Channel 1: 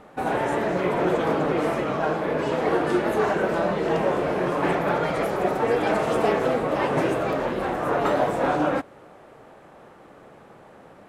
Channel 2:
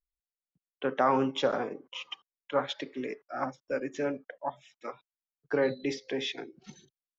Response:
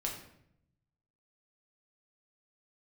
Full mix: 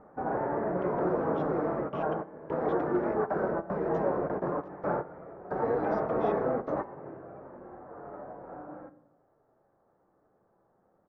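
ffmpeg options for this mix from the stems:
-filter_complex "[0:a]lowpass=1100,volume=0.447,asplit=3[s0][s1][s2];[s1]volume=0.0944[s3];[s2]volume=0.133[s4];[1:a]acompressor=threshold=0.02:ratio=6,alimiter=level_in=3.55:limit=0.0631:level=0:latency=1:release=58,volume=0.282,aeval=exprs='val(0)*gte(abs(val(0)),0.00299)':c=same,volume=0.708,asplit=3[s5][s6][s7];[s6]volume=0.211[s8];[s7]apad=whole_len=488902[s9];[s0][s9]sidechaingate=range=0.0224:threshold=0.001:ratio=16:detection=peak[s10];[2:a]atrim=start_sample=2205[s11];[s3][s8]amix=inputs=2:normalize=0[s12];[s12][s11]afir=irnorm=-1:irlink=0[s13];[s4]aecho=0:1:84:1[s14];[s10][s5][s13][s14]amix=inputs=4:normalize=0,lowpass=f=5400:w=0.5412,lowpass=f=5400:w=1.3066,highshelf=f=2300:t=q:w=1.5:g=-10.5"

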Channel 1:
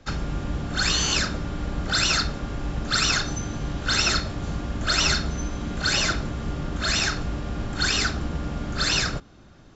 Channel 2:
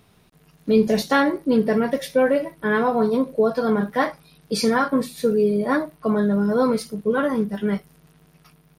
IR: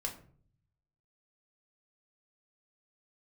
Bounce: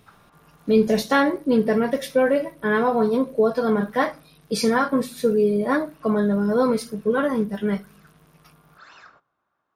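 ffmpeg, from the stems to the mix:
-filter_complex "[0:a]bandpass=f=1100:t=q:w=2.2:csg=0,volume=0.2,asplit=2[s0][s1];[s1]volume=0.141[s2];[1:a]volume=0.891,asplit=3[s3][s4][s5];[s4]volume=0.126[s6];[s5]apad=whole_len=430287[s7];[s0][s7]sidechaincompress=threshold=0.01:ratio=8:attack=16:release=820[s8];[2:a]atrim=start_sample=2205[s9];[s2][s6]amix=inputs=2:normalize=0[s10];[s10][s9]afir=irnorm=-1:irlink=0[s11];[s8][s3][s11]amix=inputs=3:normalize=0,bandreject=f=4500:w=28"

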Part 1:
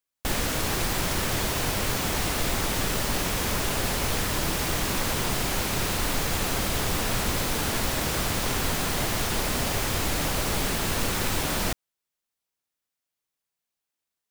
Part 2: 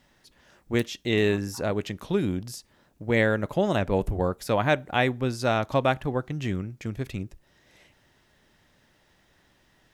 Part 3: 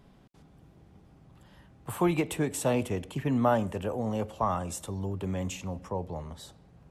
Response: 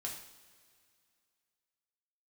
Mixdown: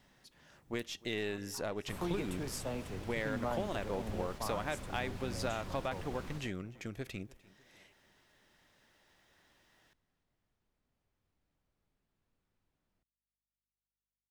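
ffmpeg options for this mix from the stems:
-filter_complex "[0:a]aemphasis=mode=reproduction:type=50kf,acrossover=split=300[s0][s1];[s1]acompressor=threshold=0.00794:ratio=1.5[s2];[s0][s2]amix=inputs=2:normalize=0,aeval=exprs='val(0)+0.00447*(sin(2*PI*50*n/s)+sin(2*PI*2*50*n/s)/2+sin(2*PI*3*50*n/s)/3+sin(2*PI*4*50*n/s)/4+sin(2*PI*5*50*n/s)/5)':c=same,adelay=1300,volume=0.15[s3];[1:a]lowshelf=f=280:g=-9,acompressor=threshold=0.0282:ratio=4,aeval=exprs='0.119*(cos(1*acos(clip(val(0)/0.119,-1,1)))-cos(1*PI/2))+0.00376*(cos(8*acos(clip(val(0)/0.119,-1,1)))-cos(8*PI/2))':c=same,volume=0.631,asplit=2[s4][s5];[s5]volume=0.075[s6];[2:a]volume=0.224,asplit=2[s7][s8];[s8]apad=whole_len=688238[s9];[s3][s9]sidechaingate=range=0.0141:threshold=0.00141:ratio=16:detection=peak[s10];[s6]aecho=0:1:299|598|897|1196|1495|1794|2093:1|0.49|0.24|0.118|0.0576|0.0282|0.0138[s11];[s10][s4][s7][s11]amix=inputs=4:normalize=0"

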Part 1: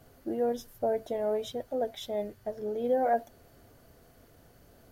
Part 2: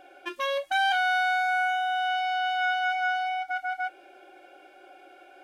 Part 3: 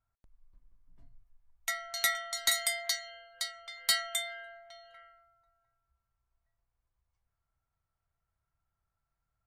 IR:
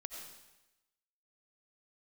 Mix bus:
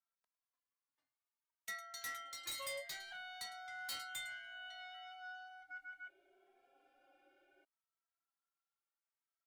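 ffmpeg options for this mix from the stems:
-filter_complex "[1:a]bass=f=250:g=9,treble=f=4000:g=-2,aecho=1:1:7.4:0.56,adelay=2200,volume=0.119[s0];[2:a]highpass=970,volume=0.562,asplit=2[s1][s2];[s2]volume=0.126,aecho=0:1:106:1[s3];[s0][s1][s3]amix=inputs=3:normalize=0,asoftclip=type=tanh:threshold=0.0141,asplit=2[s4][s5];[s5]adelay=2.7,afreqshift=0.64[s6];[s4][s6]amix=inputs=2:normalize=1"

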